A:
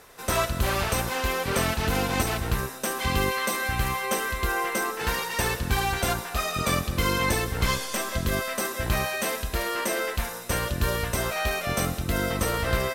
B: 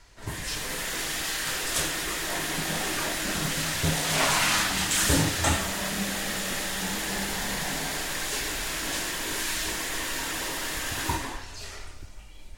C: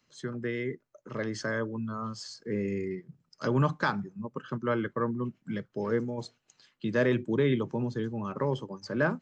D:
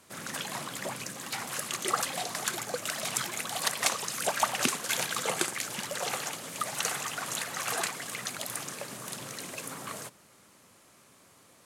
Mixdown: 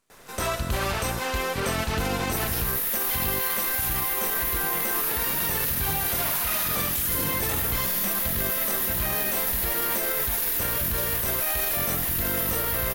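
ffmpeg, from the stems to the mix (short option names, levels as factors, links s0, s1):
-filter_complex "[0:a]adelay=100,volume=1[s0];[1:a]aexciter=amount=10.6:drive=7.7:freq=11000,adelay=2050,volume=0.75[s1];[2:a]adelay=1750,volume=0.211[s2];[3:a]aeval=exprs='max(val(0),0)':c=same,volume=0.266[s3];[s0][s1][s2][s3]amix=inputs=4:normalize=0,alimiter=limit=0.15:level=0:latency=1:release=27"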